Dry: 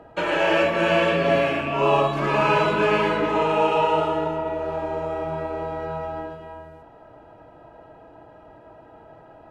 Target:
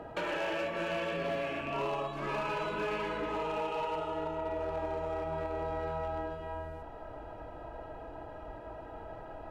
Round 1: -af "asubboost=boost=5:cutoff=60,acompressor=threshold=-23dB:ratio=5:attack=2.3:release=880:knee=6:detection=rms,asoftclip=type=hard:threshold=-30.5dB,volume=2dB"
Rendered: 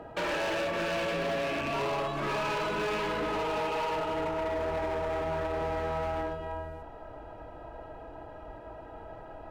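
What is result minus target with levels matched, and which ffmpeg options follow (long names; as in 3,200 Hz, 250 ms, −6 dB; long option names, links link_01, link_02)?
downward compressor: peak gain reduction −7 dB
-af "asubboost=boost=5:cutoff=60,acompressor=threshold=-31.5dB:ratio=5:attack=2.3:release=880:knee=6:detection=rms,asoftclip=type=hard:threshold=-30.5dB,volume=2dB"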